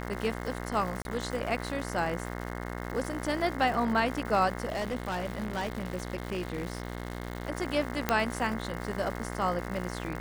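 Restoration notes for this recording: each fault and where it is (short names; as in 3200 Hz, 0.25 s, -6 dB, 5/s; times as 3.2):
buzz 60 Hz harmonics 36 -37 dBFS
crackle 290/s -36 dBFS
1.02–1.05 gap 31 ms
4.68–7.47 clipped -28 dBFS
8.09 pop -10 dBFS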